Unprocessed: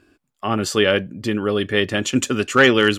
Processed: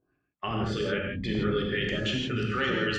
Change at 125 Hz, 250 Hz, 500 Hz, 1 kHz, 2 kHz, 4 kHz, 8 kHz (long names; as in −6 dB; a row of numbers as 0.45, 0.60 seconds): −4.0, −9.5, −11.5, −10.5, −11.0, −10.0, −21.5 decibels